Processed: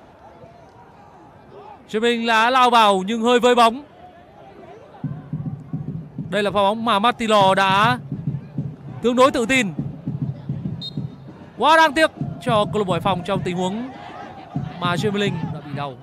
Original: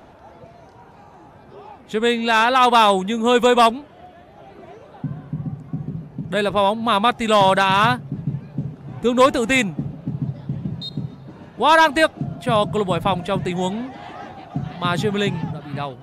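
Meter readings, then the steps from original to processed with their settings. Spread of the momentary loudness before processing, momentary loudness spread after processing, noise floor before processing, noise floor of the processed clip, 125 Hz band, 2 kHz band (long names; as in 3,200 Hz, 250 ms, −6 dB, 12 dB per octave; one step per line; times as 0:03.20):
17 LU, 17 LU, −46 dBFS, −46 dBFS, 0.0 dB, 0.0 dB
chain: high-pass filter 44 Hz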